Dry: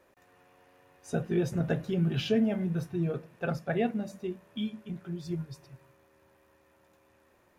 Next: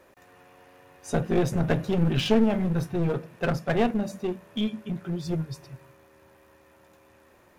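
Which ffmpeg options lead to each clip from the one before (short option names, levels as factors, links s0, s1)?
-af "aeval=exprs='clip(val(0),-1,0.02)':c=same,volume=2.37"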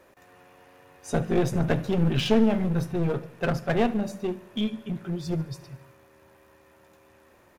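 -af "aecho=1:1:72|144|216|288|360:0.112|0.0651|0.0377|0.0219|0.0127"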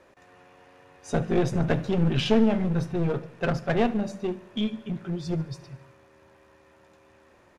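-af "lowpass=7500"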